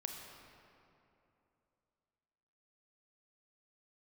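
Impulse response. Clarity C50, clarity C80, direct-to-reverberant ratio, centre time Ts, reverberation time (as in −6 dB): 3.0 dB, 4.0 dB, 2.0 dB, 83 ms, 2.9 s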